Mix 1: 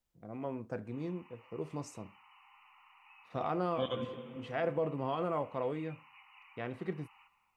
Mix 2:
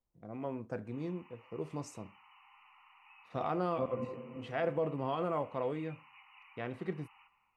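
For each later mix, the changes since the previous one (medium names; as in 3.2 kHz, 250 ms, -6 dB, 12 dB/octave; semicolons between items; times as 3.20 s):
second voice: add steep low-pass 1.2 kHz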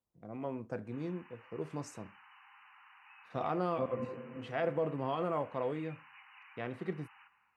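background: remove static phaser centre 1.6 kHz, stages 6; master: add high-pass 73 Hz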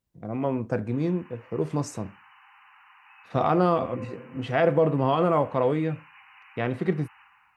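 first voice +11.5 dB; background: send +11.5 dB; master: add bass shelf 130 Hz +7 dB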